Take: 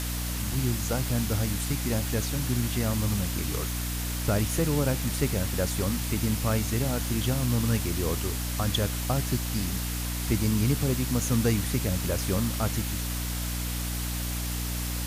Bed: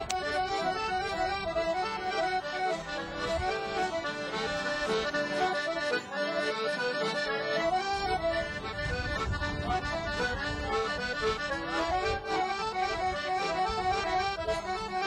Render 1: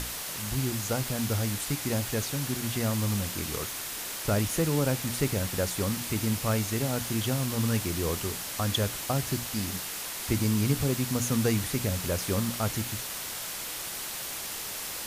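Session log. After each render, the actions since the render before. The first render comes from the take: hum notches 60/120/180/240/300 Hz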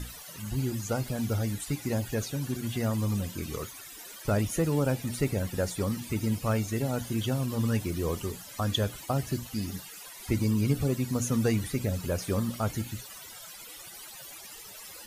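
noise reduction 17 dB, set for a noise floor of -37 dBFS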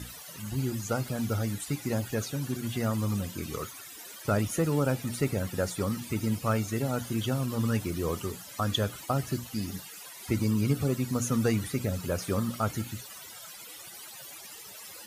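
high-pass 79 Hz; dynamic bell 1.3 kHz, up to +6 dB, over -56 dBFS, Q 4.8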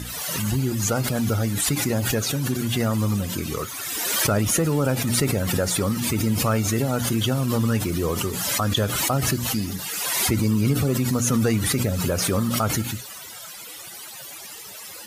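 in parallel at +1 dB: peak limiter -21.5 dBFS, peak gain reduction 7.5 dB; on the sum: swell ahead of each attack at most 25 dB/s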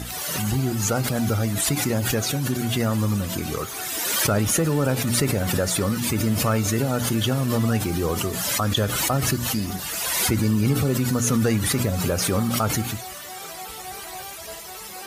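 add bed -9 dB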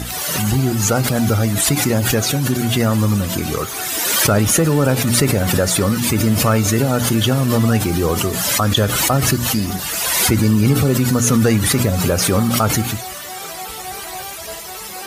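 trim +6.5 dB

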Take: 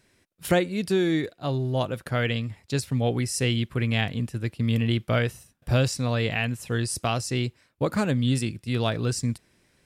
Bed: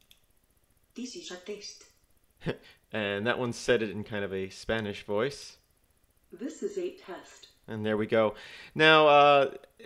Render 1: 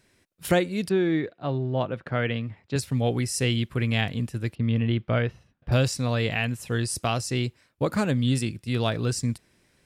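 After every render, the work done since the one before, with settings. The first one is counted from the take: 0.89–2.76 s: band-pass 100–2600 Hz; 4.55–5.72 s: distance through air 270 m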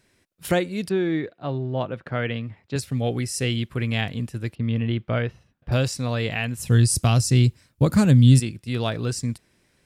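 2.82–3.52 s: band-stop 940 Hz, Q 6; 6.57–8.40 s: tone controls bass +13 dB, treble +8 dB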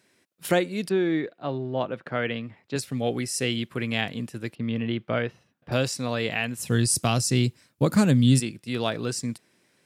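high-pass 180 Hz 12 dB/octave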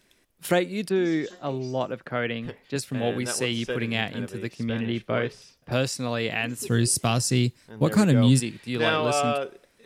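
add bed -5.5 dB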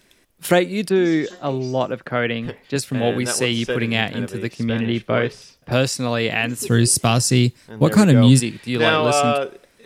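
trim +6.5 dB

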